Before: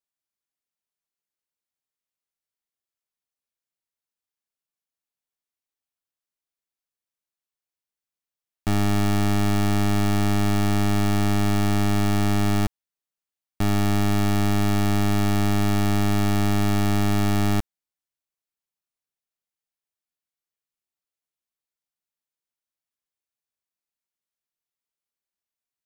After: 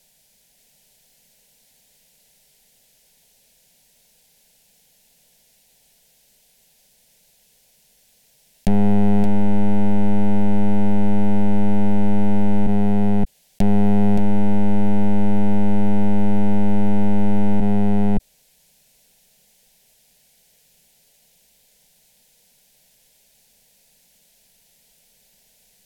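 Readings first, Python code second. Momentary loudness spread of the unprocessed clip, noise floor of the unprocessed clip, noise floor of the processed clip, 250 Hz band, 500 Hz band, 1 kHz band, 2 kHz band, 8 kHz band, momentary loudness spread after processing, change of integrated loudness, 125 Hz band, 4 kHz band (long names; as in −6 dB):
2 LU, below −85 dBFS, −59 dBFS, +5.5 dB, +4.0 dB, 0.0 dB, −7.0 dB, below −10 dB, 2 LU, +2.5 dB, −0.5 dB, below −10 dB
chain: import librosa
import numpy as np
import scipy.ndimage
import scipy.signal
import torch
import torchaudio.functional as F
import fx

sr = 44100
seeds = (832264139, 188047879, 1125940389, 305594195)

p1 = fx.env_lowpass_down(x, sr, base_hz=860.0, full_db=-20.5)
p2 = fx.low_shelf(p1, sr, hz=180.0, db=9.0)
p3 = fx.leveller(p2, sr, passes=3)
p4 = fx.fixed_phaser(p3, sr, hz=320.0, stages=6)
p5 = p4 + fx.echo_single(p4, sr, ms=572, db=-5.5, dry=0)
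y = fx.env_flatten(p5, sr, amount_pct=70)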